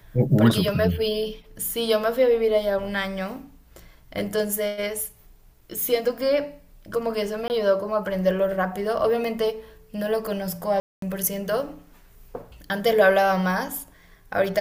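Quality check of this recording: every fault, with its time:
7.48–7.5 gap 19 ms
10.8–11.02 gap 0.223 s

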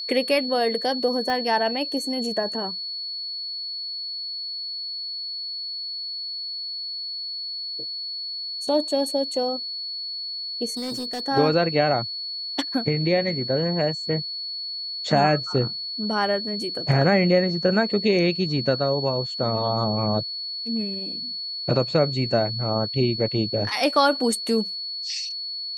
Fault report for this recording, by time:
tone 4400 Hz -29 dBFS
1.3 pop -15 dBFS
10.77–11.28 clipped -26.5 dBFS

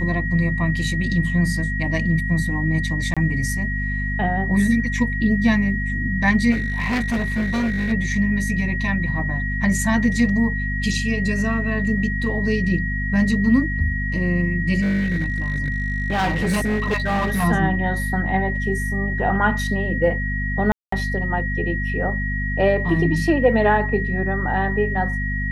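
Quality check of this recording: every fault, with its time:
hum 50 Hz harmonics 5 -25 dBFS
tone 1900 Hz -26 dBFS
3.14–3.17 gap 26 ms
6.51–7.93 clipped -18 dBFS
14.81–17.45 clipped -17 dBFS
20.72–20.92 gap 0.204 s

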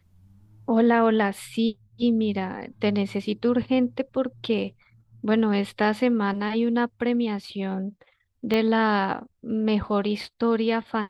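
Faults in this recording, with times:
8.54 pop -13 dBFS

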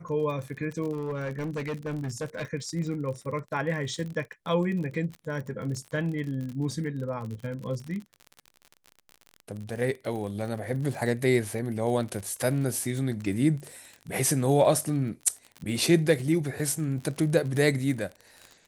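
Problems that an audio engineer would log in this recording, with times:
crackle 44/s -34 dBFS
0.92–2.45 clipped -28 dBFS

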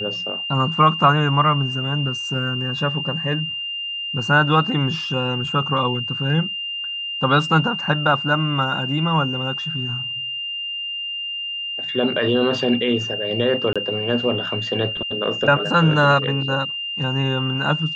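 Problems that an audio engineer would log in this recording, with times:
tone 2800 Hz -25 dBFS
13.73–13.76 gap 26 ms

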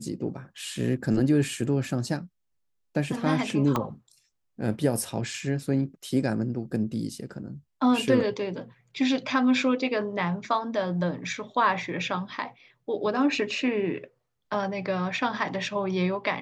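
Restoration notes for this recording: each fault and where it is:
3.76 pop -12 dBFS

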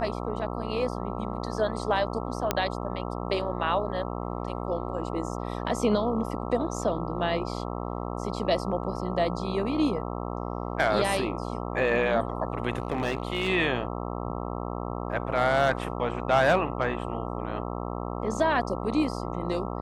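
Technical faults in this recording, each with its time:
buzz 60 Hz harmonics 22 -33 dBFS
2.51 pop -8 dBFS
12.72–13.49 clipped -21.5 dBFS

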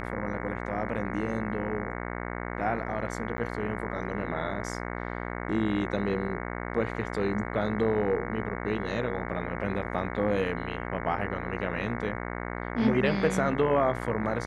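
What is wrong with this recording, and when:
buzz 60 Hz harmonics 37 -35 dBFS
3.37–3.38 gap 10 ms

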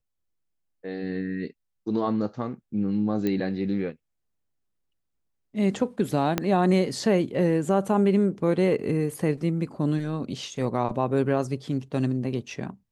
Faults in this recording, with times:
3.27 pop -15 dBFS
6.38 pop -8 dBFS

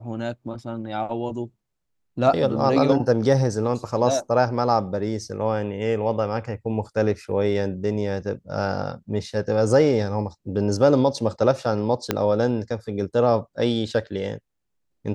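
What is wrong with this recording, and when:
12.11 pop -6 dBFS

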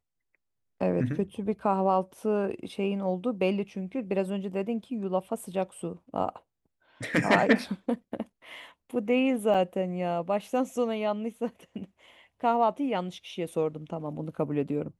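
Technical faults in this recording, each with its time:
9.54–9.55 gap 5.9 ms

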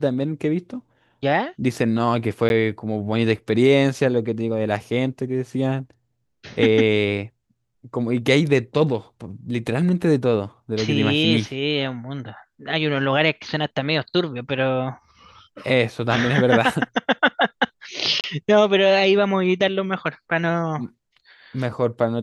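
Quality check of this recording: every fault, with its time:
2.49–2.5 gap 11 ms
18.21–18.24 gap 28 ms

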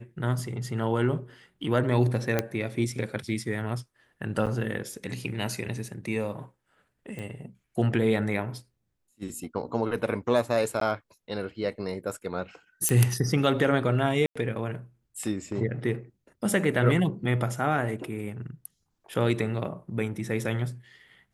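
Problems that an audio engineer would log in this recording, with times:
2.39 pop -10 dBFS
4.46–4.47 gap 7.5 ms
7.19 pop
10.8–10.81 gap 13 ms
12.89 pop -9 dBFS
14.26–14.36 gap 95 ms

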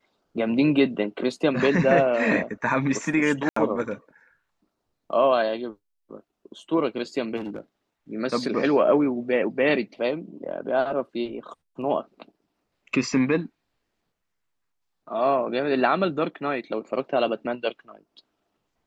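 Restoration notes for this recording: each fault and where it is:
3.49–3.56 gap 74 ms
7.36–7.6 clipped -28 dBFS

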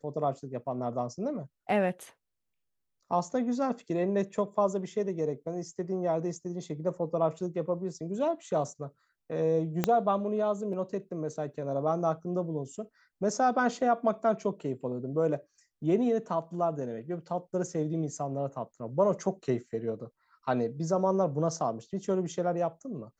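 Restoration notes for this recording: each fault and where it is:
9.84 pop -11 dBFS

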